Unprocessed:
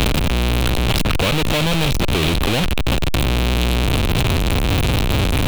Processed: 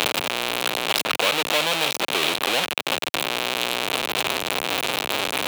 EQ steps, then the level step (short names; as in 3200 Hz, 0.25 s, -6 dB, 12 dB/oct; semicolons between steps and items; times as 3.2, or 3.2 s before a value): HPF 540 Hz 12 dB/oct; 0.0 dB